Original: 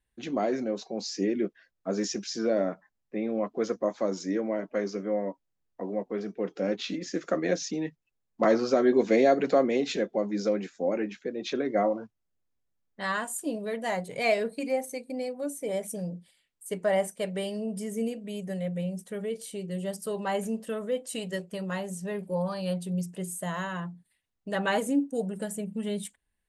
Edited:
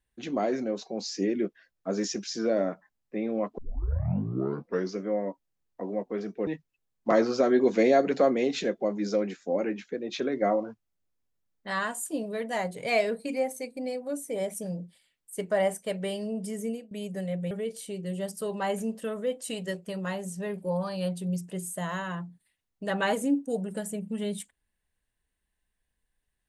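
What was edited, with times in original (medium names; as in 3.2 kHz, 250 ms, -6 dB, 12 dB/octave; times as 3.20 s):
3.58 s: tape start 1.37 s
6.47–7.80 s: delete
17.94–18.24 s: fade out, to -17 dB
18.84–19.16 s: delete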